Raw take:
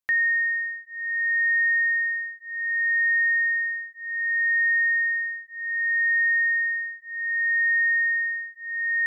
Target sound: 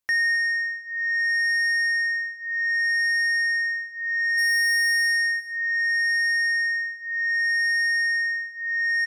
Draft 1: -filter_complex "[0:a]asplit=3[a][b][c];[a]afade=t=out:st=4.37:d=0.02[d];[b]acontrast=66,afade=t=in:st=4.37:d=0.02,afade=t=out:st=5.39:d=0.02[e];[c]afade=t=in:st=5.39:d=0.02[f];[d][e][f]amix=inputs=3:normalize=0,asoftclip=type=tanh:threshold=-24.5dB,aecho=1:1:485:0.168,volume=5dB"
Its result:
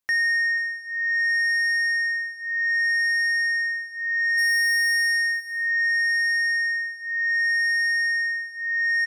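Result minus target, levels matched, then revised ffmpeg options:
echo 0.222 s late
-filter_complex "[0:a]asplit=3[a][b][c];[a]afade=t=out:st=4.37:d=0.02[d];[b]acontrast=66,afade=t=in:st=4.37:d=0.02,afade=t=out:st=5.39:d=0.02[e];[c]afade=t=in:st=5.39:d=0.02[f];[d][e][f]amix=inputs=3:normalize=0,asoftclip=type=tanh:threshold=-24.5dB,aecho=1:1:263:0.168,volume=5dB"

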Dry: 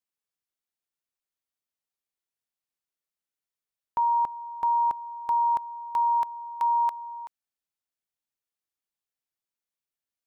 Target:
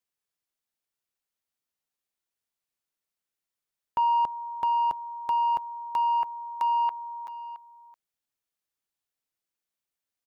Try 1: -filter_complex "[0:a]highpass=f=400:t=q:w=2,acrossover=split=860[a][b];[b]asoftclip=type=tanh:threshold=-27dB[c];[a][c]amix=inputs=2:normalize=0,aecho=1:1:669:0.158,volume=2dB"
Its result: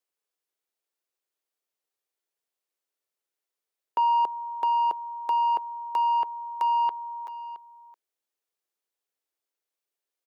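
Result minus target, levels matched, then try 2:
500 Hz band +3.5 dB
-filter_complex "[0:a]acrossover=split=860[a][b];[b]asoftclip=type=tanh:threshold=-27dB[c];[a][c]amix=inputs=2:normalize=0,aecho=1:1:669:0.158,volume=2dB"

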